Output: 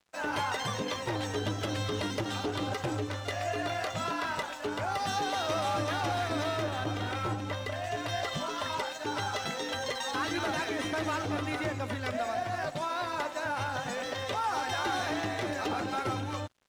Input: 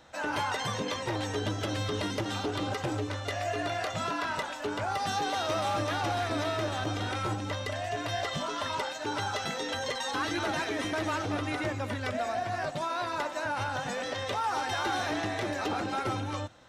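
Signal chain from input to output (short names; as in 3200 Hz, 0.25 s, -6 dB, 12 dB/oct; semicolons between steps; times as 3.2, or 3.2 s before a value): 6.62–7.84 tone controls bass 0 dB, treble -5 dB; crossover distortion -51.5 dBFS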